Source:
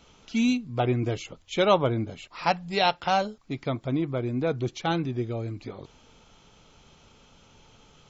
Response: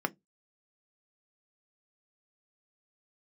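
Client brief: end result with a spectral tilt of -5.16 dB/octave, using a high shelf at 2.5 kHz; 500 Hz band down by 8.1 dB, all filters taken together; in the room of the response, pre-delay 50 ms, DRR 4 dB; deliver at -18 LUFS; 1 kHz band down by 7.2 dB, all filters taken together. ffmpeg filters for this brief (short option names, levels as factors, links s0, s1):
-filter_complex "[0:a]equalizer=f=500:t=o:g=-9,equalizer=f=1000:t=o:g=-5.5,highshelf=f=2500:g=-3,asplit=2[s0][s1];[1:a]atrim=start_sample=2205,adelay=50[s2];[s1][s2]afir=irnorm=-1:irlink=0,volume=0.299[s3];[s0][s3]amix=inputs=2:normalize=0,volume=3.76"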